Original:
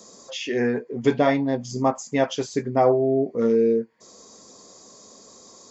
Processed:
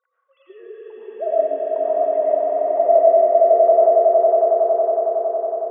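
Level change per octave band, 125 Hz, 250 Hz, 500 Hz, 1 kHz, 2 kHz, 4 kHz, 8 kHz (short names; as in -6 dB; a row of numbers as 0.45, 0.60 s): under -40 dB, under -10 dB, +8.5 dB, +9.5 dB, under -15 dB, under -25 dB, n/a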